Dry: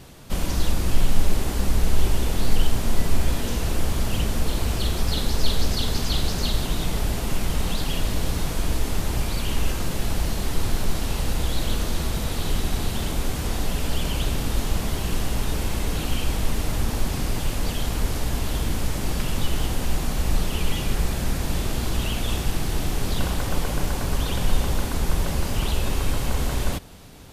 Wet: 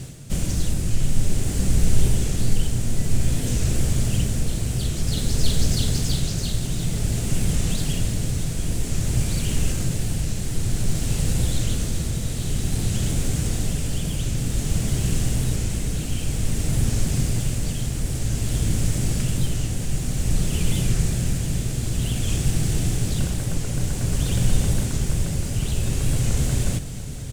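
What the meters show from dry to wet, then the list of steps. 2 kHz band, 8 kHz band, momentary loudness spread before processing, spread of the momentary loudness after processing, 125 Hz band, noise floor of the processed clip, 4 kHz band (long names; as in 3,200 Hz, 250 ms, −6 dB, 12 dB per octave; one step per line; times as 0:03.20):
−4.0 dB, +4.5 dB, 2 LU, 4 LU, +5.0 dB, −28 dBFS, −2.0 dB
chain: running median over 3 samples
octave-band graphic EQ 125/1,000/4,000/8,000 Hz +11/−10/−3/+11 dB
reversed playback
upward compression, threshold −25 dBFS
reversed playback
amplitude tremolo 0.53 Hz, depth 36%
on a send: single-tap delay 690 ms −13.5 dB
on the sum: wow of a warped record 45 rpm, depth 100 cents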